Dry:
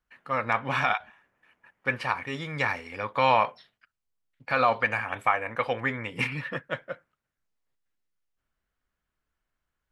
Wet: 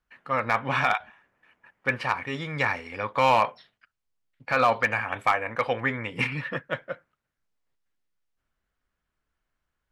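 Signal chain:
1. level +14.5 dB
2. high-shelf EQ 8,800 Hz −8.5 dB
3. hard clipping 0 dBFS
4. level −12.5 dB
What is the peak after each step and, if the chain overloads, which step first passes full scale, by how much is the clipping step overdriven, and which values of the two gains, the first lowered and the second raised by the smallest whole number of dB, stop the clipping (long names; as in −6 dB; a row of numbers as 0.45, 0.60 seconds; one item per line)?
+5.0, +5.0, 0.0, −12.5 dBFS
step 1, 5.0 dB
step 1 +9.5 dB, step 4 −7.5 dB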